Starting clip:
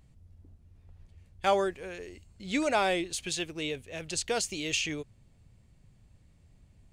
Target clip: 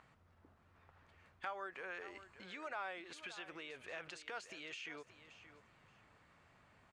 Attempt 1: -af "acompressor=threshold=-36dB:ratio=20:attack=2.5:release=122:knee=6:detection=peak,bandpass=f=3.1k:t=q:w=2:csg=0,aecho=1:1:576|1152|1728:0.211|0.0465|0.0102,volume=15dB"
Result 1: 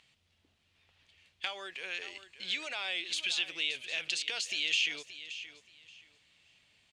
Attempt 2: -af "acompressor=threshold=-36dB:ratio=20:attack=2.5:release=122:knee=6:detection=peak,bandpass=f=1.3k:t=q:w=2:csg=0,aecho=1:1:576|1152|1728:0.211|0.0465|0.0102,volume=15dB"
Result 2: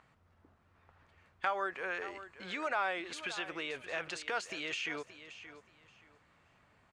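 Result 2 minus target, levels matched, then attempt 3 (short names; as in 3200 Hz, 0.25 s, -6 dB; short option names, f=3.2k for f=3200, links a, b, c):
compressor: peak gain reduction -10.5 dB
-af "acompressor=threshold=-47dB:ratio=20:attack=2.5:release=122:knee=6:detection=peak,bandpass=f=1.3k:t=q:w=2:csg=0,aecho=1:1:576|1152|1728:0.211|0.0465|0.0102,volume=15dB"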